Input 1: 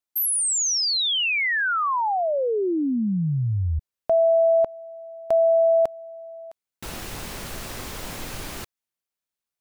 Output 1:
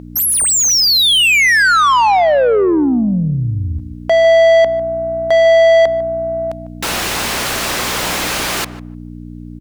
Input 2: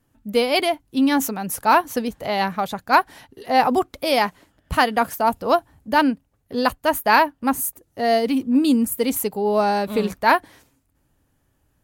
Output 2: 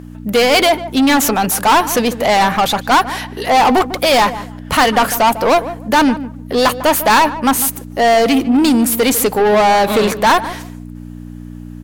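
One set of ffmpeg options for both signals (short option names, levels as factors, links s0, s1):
-filter_complex "[0:a]acontrast=52,aeval=exprs='val(0)+0.0282*(sin(2*PI*60*n/s)+sin(2*PI*2*60*n/s)/2+sin(2*PI*3*60*n/s)/3+sin(2*PI*4*60*n/s)/4+sin(2*PI*5*60*n/s)/5)':c=same,asplit=2[s0][s1];[s1]highpass=f=720:p=1,volume=17.8,asoftclip=type=tanh:threshold=0.944[s2];[s0][s2]amix=inputs=2:normalize=0,lowpass=f=7100:p=1,volume=0.501,asplit=2[s3][s4];[s4]adelay=150,lowpass=f=1100:p=1,volume=0.251,asplit=2[s5][s6];[s6]adelay=150,lowpass=f=1100:p=1,volume=0.2,asplit=2[s7][s8];[s8]adelay=150,lowpass=f=1100:p=1,volume=0.2[s9];[s5][s7][s9]amix=inputs=3:normalize=0[s10];[s3][s10]amix=inputs=2:normalize=0,volume=0.631"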